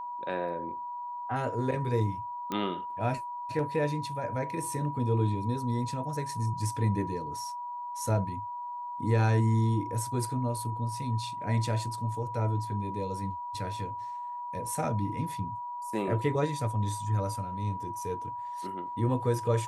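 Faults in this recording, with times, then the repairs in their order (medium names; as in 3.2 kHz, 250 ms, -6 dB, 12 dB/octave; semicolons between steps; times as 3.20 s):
whine 970 Hz -35 dBFS
2.52 s: pop -19 dBFS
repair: de-click; band-stop 970 Hz, Q 30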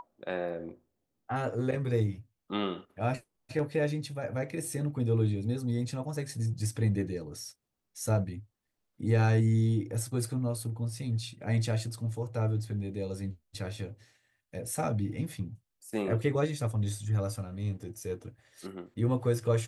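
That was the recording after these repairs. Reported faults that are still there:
nothing left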